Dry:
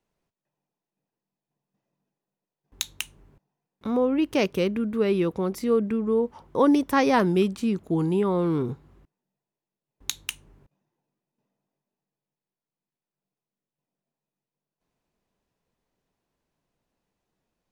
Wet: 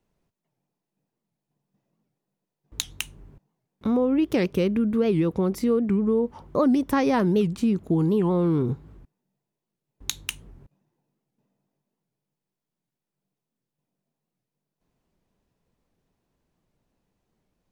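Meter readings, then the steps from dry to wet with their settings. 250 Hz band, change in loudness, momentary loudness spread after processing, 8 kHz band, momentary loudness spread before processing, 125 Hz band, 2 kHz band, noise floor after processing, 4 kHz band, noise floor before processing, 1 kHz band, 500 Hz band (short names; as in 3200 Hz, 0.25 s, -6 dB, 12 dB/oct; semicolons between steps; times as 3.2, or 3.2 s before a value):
+2.0 dB, +1.0 dB, 12 LU, +0.5 dB, 13 LU, +4.0 dB, -3.0 dB, under -85 dBFS, -1.0 dB, under -85 dBFS, -3.0 dB, -0.5 dB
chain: low shelf 360 Hz +7.5 dB; compressor 2.5:1, threshold -21 dBFS, peak gain reduction 7 dB; record warp 78 rpm, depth 250 cents; gain +1 dB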